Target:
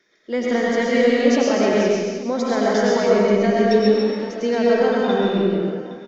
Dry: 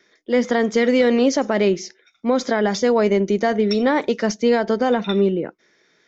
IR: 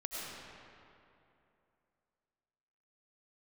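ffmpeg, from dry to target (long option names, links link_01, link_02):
-filter_complex "[0:a]asettb=1/sr,asplit=3[link_01][link_02][link_03];[link_01]atrim=end=3.804[link_04];[link_02]atrim=start=3.8:end=4.41,asetpts=PTS-STARTPTS,afade=type=in:duration=0.004:curve=qsin,afade=type=out:start_time=0.606:duration=0.004:curve=qsin,acompressor=threshold=-31dB:ratio=3[link_05];[link_03]atrim=start=4.406[link_06];[link_04][link_05]acrossfade=duration=0.004:curve1=hsin:curve2=qsin[link_07];[link_07][link_06]acrossfade=duration=0.004:curve1=qsin:curve2=hsin,aecho=1:1:133|301|353|817:0.631|0.282|0.126|0.133[link_08];[1:a]atrim=start_sample=2205,afade=type=out:start_time=0.37:duration=0.01,atrim=end_sample=16758[link_09];[link_08][link_09]afir=irnorm=-1:irlink=0,volume=-1.5dB"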